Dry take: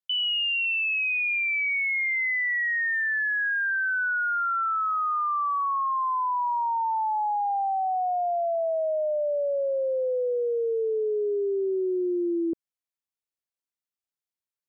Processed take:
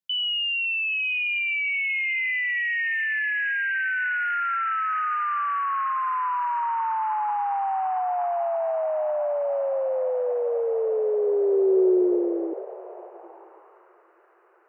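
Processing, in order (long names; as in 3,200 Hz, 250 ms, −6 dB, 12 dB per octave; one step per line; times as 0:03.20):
feedback delay with all-pass diffusion 991 ms, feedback 60%, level −13 dB
high-pass filter sweep 150 Hz → 1,400 Hz, 0:10.42–0:14.12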